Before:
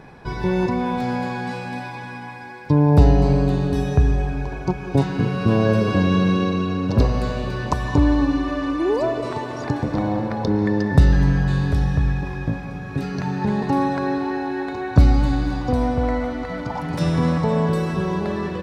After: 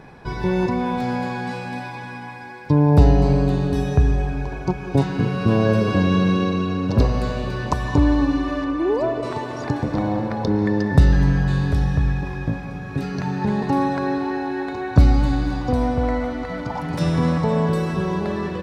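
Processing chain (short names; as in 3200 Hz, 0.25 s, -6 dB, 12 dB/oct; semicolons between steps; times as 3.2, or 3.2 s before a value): 8.64–9.23 high shelf 3400 Hz -8.5 dB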